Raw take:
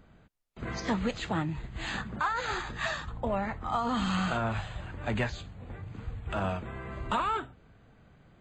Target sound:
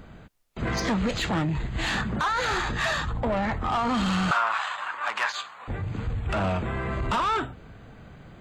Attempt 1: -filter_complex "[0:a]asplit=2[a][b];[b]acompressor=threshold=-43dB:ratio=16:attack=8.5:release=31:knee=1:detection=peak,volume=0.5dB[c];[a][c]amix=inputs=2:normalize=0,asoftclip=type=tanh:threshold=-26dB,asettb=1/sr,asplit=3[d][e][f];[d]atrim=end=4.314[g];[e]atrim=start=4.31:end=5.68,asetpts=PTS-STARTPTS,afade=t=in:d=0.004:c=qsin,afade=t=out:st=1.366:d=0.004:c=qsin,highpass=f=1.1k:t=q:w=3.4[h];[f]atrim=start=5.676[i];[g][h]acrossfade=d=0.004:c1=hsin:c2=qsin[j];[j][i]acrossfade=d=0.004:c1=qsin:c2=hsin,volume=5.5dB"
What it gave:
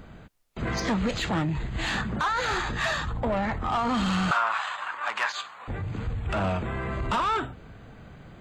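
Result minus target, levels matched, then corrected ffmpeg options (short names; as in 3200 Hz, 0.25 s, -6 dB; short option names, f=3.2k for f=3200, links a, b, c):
compressor: peak gain reduction +5.5 dB
-filter_complex "[0:a]asplit=2[a][b];[b]acompressor=threshold=-37dB:ratio=16:attack=8.5:release=31:knee=1:detection=peak,volume=0.5dB[c];[a][c]amix=inputs=2:normalize=0,asoftclip=type=tanh:threshold=-26dB,asettb=1/sr,asplit=3[d][e][f];[d]atrim=end=4.314[g];[e]atrim=start=4.31:end=5.68,asetpts=PTS-STARTPTS,afade=t=in:d=0.004:c=qsin,afade=t=out:st=1.366:d=0.004:c=qsin,highpass=f=1.1k:t=q:w=3.4[h];[f]atrim=start=5.676[i];[g][h]acrossfade=d=0.004:c1=hsin:c2=qsin[j];[j][i]acrossfade=d=0.004:c1=qsin:c2=hsin,volume=5.5dB"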